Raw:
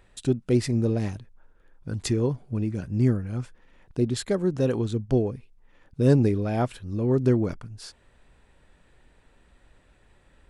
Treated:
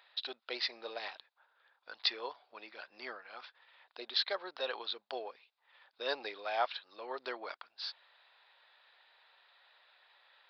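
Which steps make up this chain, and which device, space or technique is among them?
musical greeting card (downsampling 11025 Hz; HPF 730 Hz 24 dB/oct; bell 3800 Hz +9 dB 0.44 oct)

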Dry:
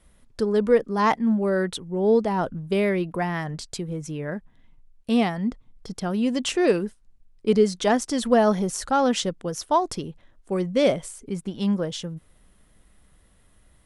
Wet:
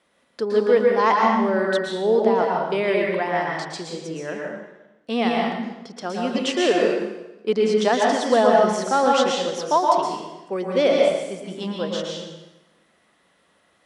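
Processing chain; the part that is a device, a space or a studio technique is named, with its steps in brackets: supermarket ceiling speaker (BPF 340–5500 Hz; reverb RT60 1.0 s, pre-delay 0.11 s, DRR -1.5 dB); gain +1.5 dB

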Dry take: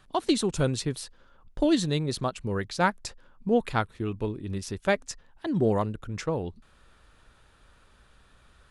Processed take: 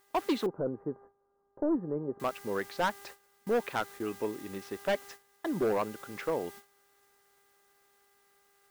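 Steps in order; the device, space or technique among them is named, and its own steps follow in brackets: aircraft radio (BPF 320–2500 Hz; hard clip -23.5 dBFS, distortion -9 dB; buzz 400 Hz, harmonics 5, -54 dBFS -2 dB/oct; white noise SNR 19 dB; gate -47 dBFS, range -17 dB); 0.46–2.2 Bessel low-pass 720 Hz, order 8

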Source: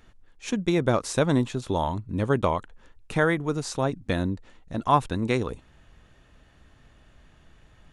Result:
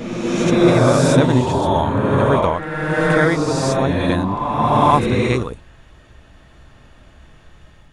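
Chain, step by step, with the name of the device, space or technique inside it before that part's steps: reverse reverb (reverse; reverb RT60 2.4 s, pre-delay 48 ms, DRR -3.5 dB; reverse); gain +4.5 dB

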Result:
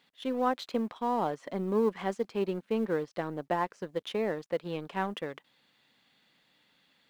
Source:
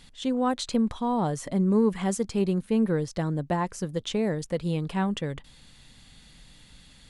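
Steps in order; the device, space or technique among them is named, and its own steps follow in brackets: phone line with mismatched companding (BPF 330–3200 Hz; G.711 law mismatch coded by A)

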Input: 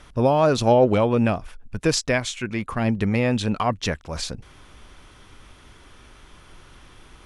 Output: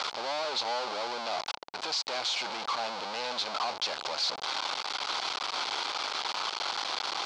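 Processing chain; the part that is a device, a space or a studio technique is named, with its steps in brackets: home computer beeper (infinite clipping; speaker cabinet 770–5200 Hz, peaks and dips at 830 Hz +6 dB, 1800 Hz -10 dB, 2700 Hz -4 dB, 4400 Hz +6 dB); gain -4 dB

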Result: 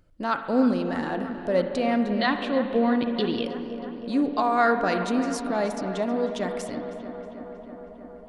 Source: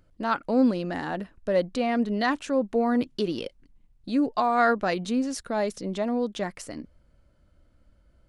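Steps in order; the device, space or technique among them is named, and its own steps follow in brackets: dub delay into a spring reverb (darkening echo 0.318 s, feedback 80%, low-pass 3300 Hz, level -12.5 dB; spring tank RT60 2.2 s, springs 43/55 ms, chirp 30 ms, DRR 7.5 dB); 2.19–3.45 resonant high shelf 5000 Hz -10 dB, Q 3

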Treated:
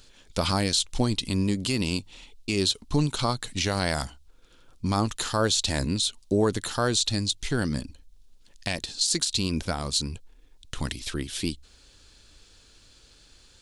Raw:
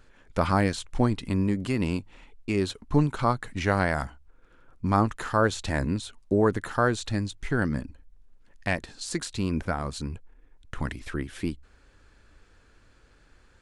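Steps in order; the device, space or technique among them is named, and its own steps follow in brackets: over-bright horn tweeter (resonant high shelf 2600 Hz +12.5 dB, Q 1.5; limiter -13 dBFS, peak gain reduction 9.5 dB)

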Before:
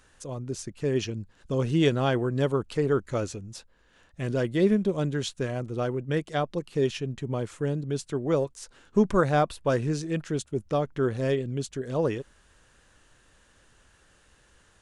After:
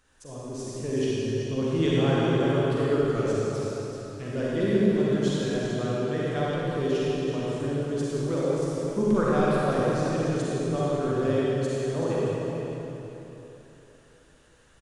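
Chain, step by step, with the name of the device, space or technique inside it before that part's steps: cave (echo 0.381 s -9.5 dB; reverb RT60 3.5 s, pre-delay 39 ms, DRR -7.5 dB); gain -7.5 dB

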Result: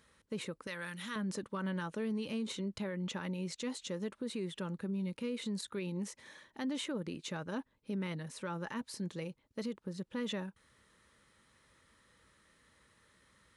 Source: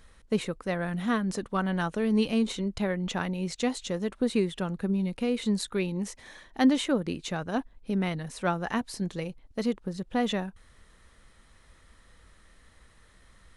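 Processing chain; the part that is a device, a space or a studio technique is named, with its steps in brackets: PA system with an anti-feedback notch (HPF 110 Hz 12 dB/oct; Butterworth band-stop 720 Hz, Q 5.5; limiter -24.5 dBFS, peak gain reduction 11 dB); 0.67–1.16 tilt shelf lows -9.5 dB, about 1300 Hz; gain -6 dB

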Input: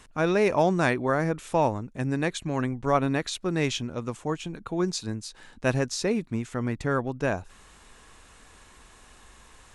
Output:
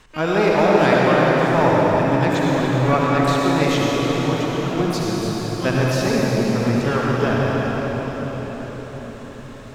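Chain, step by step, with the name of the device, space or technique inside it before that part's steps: LPF 5700 Hz 12 dB/oct; shimmer-style reverb (harmoniser +12 st -11 dB; reverb RT60 6.0 s, pre-delay 55 ms, DRR -5 dB); gain +2.5 dB

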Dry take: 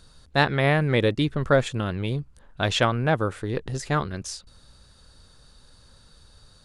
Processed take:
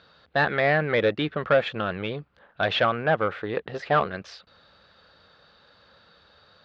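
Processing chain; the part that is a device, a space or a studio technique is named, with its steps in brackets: 3.61–4.11 dynamic EQ 650 Hz, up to +8 dB, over -39 dBFS, Q 0.89; overdrive pedal into a guitar cabinet (overdrive pedal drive 19 dB, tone 1500 Hz, clips at -4 dBFS; speaker cabinet 100–4100 Hz, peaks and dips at 130 Hz -8 dB, 260 Hz -7 dB, 370 Hz -5 dB, 960 Hz -6 dB); gain -3 dB

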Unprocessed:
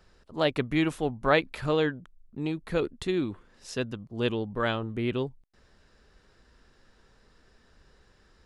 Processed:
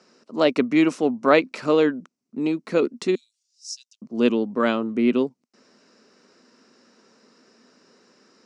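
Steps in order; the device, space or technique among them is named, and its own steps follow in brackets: 3.15–4.02 inverse Chebyshev high-pass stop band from 870 Hz, stop band 80 dB; television speaker (speaker cabinet 210–8100 Hz, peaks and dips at 240 Hz +7 dB, 820 Hz -5 dB, 1700 Hz -7 dB, 3400 Hz -9 dB, 5600 Hz +6 dB); gain +7.5 dB

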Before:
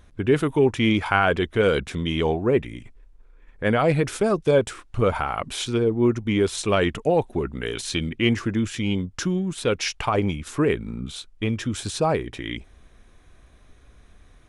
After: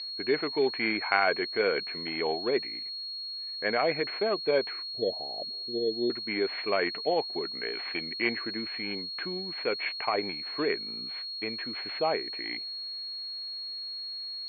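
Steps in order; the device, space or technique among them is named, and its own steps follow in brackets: 4.85–6.1 steep low-pass 680 Hz 48 dB/oct; toy sound module (decimation joined by straight lines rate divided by 4×; pulse-width modulation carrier 4300 Hz; speaker cabinet 540–3500 Hz, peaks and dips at 540 Hz -5 dB, 910 Hz -6 dB, 1300 Hz -7 dB, 2200 Hz +8 dB, 3300 Hz -3 dB)

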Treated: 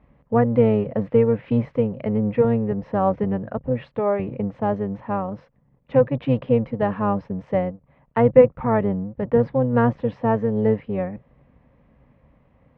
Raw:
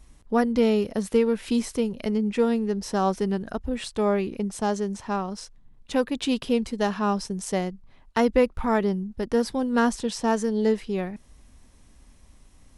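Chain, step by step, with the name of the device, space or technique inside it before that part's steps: sub-octave bass pedal (octaver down 1 oct, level -1 dB; speaker cabinet 82–2100 Hz, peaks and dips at 94 Hz -8 dB, 140 Hz +6 dB, 360 Hz -8 dB, 530 Hz +9 dB, 1500 Hz -5 dB); gain +2 dB

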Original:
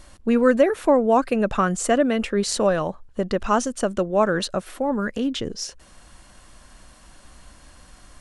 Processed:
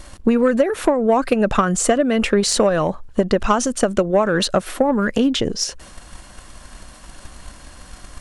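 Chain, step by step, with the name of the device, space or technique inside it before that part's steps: drum-bus smash (transient shaper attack +8 dB, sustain +4 dB; compressor 16:1, threshold -16 dBFS, peak gain reduction 12 dB; soft clip -10.5 dBFS, distortion -20 dB); gain +6 dB

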